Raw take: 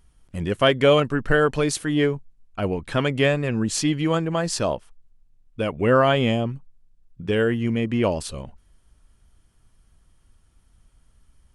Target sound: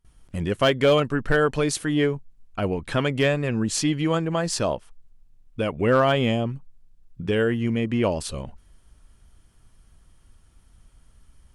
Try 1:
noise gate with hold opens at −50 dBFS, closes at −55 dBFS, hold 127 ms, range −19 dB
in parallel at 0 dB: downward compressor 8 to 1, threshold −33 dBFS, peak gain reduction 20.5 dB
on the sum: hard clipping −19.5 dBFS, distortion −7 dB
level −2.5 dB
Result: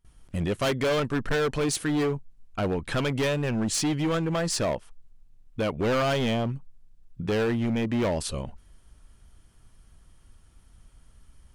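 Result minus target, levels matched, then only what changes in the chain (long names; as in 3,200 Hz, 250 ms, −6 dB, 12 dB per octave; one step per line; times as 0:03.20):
hard clipping: distortion +19 dB
change: hard clipping −8.5 dBFS, distortion −26 dB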